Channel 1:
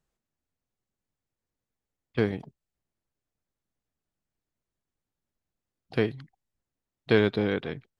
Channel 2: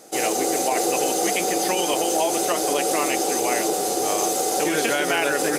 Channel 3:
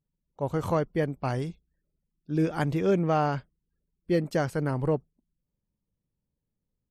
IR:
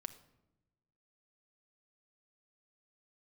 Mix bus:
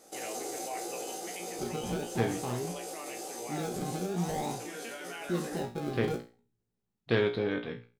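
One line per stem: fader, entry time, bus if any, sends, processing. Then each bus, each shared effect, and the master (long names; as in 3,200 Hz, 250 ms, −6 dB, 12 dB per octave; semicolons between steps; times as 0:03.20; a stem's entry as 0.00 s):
+2.0 dB, 0.00 s, no bus, send −20.5 dB, no processing
−5.5 dB, 0.00 s, bus A, no send, brickwall limiter −18.5 dBFS, peak gain reduction 9 dB
−5.0 dB, 1.20 s, bus A, no send, sample-and-hold swept by an LFO 32×, swing 100% 0.47 Hz; hollow resonant body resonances 220/380/790/3,800 Hz, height 15 dB
bus A: 0.0 dB, speech leveller within 3 dB 2 s; brickwall limiter −17.5 dBFS, peak gain reduction 10.5 dB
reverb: on, RT60 0.95 s, pre-delay 5 ms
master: tuned comb filter 59 Hz, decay 0.32 s, harmonics all, mix 90%; highs frequency-modulated by the lows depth 0.14 ms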